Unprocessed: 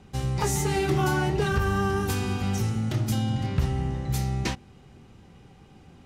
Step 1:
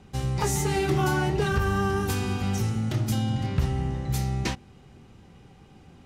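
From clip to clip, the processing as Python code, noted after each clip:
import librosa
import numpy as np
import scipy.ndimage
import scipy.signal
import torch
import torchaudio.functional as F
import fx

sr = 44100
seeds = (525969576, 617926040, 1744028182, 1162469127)

y = x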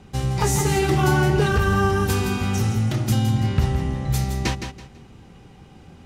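y = fx.echo_feedback(x, sr, ms=165, feedback_pct=25, wet_db=-8)
y = y * 10.0 ** (4.5 / 20.0)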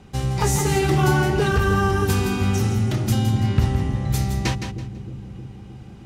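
y = fx.echo_bbd(x, sr, ms=311, stages=1024, feedback_pct=71, wet_db=-10)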